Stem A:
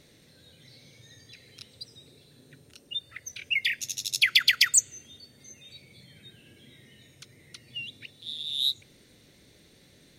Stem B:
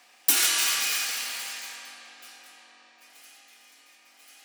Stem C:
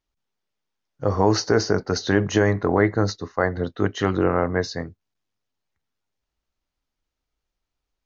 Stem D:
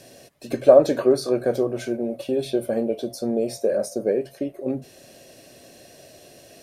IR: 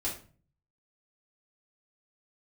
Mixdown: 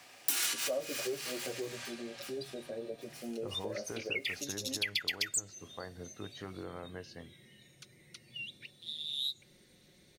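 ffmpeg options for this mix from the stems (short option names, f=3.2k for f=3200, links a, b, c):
-filter_complex "[0:a]aecho=1:1:5.5:0.5,adelay=600,volume=-6dB[a];[1:a]acrusher=bits=8:mode=log:mix=0:aa=0.000001,volume=1dB[b];[2:a]acompressor=threshold=-26dB:ratio=2,adelay=2400,volume=-17.5dB[c];[3:a]asplit=2[d][e];[e]adelay=9.2,afreqshift=1.5[f];[d][f]amix=inputs=2:normalize=1,volume=-14.5dB,asplit=2[g][h];[h]apad=whole_len=195919[i];[b][i]sidechaincompress=threshold=-45dB:ratio=8:attack=6.4:release=207[j];[a][j][c][g]amix=inputs=4:normalize=0,acompressor=threshold=-34dB:ratio=2.5"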